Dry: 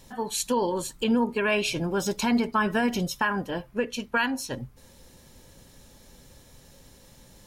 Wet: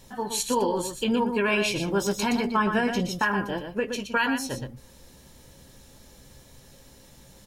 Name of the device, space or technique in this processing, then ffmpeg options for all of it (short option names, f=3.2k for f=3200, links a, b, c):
slapback doubling: -filter_complex "[0:a]asettb=1/sr,asplit=3[a][b][c];[a]atrim=end=2.474[d];[b]atrim=start=2.47:end=3.19,asetpts=PTS-STARTPTS,afade=t=in:d=0.004:c=qsin,afade=t=out:st=0.716:d=0.004:c=qsin,highshelf=f=11k:g=-11.5[e];[c]atrim=start=3.186[f];[d][e]acrossfade=d=0.004:c1=hsin:c2=qsin[g];[g][f]acrossfade=d=0.004:c1=qsin:c2=hsin,asplit=3[h][i][j];[i]adelay=15,volume=-9dB[k];[j]adelay=120,volume=-7dB[l];[h][k][l]amix=inputs=3:normalize=0"